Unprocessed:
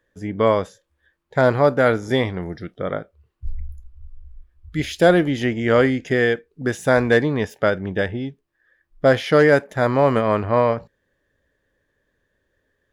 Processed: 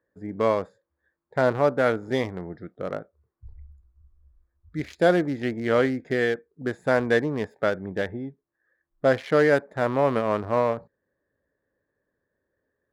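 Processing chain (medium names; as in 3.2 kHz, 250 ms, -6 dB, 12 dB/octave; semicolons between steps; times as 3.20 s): local Wiener filter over 15 samples; high-pass 150 Hz 6 dB/octave; trim -4.5 dB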